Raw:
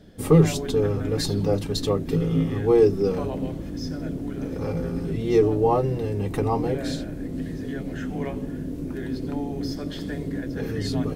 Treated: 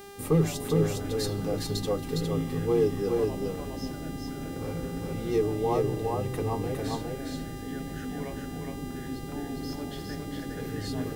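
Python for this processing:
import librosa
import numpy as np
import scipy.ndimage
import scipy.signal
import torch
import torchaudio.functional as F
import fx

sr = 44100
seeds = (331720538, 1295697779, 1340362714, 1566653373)

y = fx.dmg_buzz(x, sr, base_hz=400.0, harmonics=40, level_db=-39.0, tilt_db=-6, odd_only=False)
y = fx.high_shelf(y, sr, hz=11000.0, db=10.0)
y = y + 10.0 ** (-3.0 / 20.0) * np.pad(y, (int(409 * sr / 1000.0), 0))[:len(y)]
y = y * 10.0 ** (-7.5 / 20.0)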